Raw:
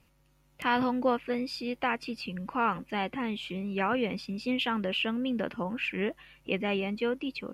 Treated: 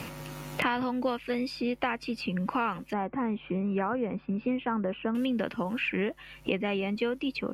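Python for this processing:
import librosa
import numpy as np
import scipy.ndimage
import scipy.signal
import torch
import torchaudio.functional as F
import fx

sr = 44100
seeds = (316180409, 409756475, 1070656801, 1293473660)

y = fx.cheby2_lowpass(x, sr, hz=7400.0, order=4, stop_db=80, at=(2.93, 5.15))
y = fx.band_squash(y, sr, depth_pct=100)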